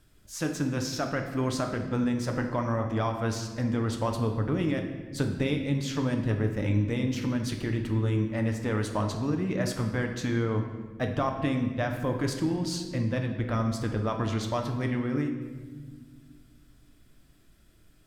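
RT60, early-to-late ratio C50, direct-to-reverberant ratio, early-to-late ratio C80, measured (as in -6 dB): 1.5 s, 6.5 dB, 3.5 dB, 8.5 dB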